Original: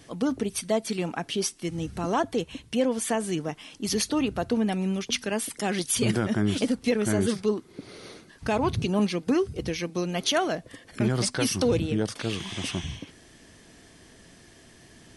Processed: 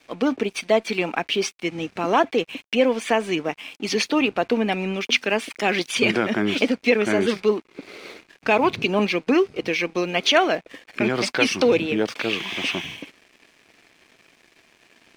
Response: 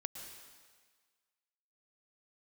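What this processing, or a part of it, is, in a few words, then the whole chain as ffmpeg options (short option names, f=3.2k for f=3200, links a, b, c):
pocket radio on a weak battery: -af "highpass=290,lowpass=4.2k,aeval=exprs='sgn(val(0))*max(abs(val(0))-0.00188,0)':c=same,equalizer=f=2.4k:t=o:w=0.37:g=9.5,volume=7.5dB"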